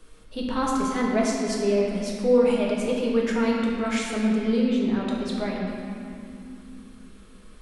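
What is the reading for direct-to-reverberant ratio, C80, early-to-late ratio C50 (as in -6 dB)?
-3.5 dB, 0.5 dB, -0.5 dB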